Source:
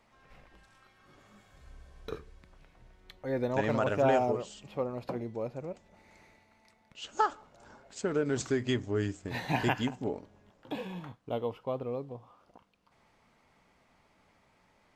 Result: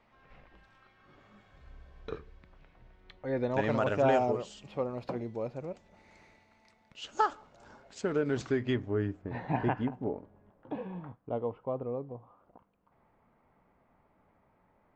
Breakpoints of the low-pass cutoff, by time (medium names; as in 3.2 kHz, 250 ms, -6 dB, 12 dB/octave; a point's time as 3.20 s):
3.24 s 3.5 kHz
3.95 s 7 kHz
7.82 s 7 kHz
8.68 s 2.8 kHz
9.19 s 1.3 kHz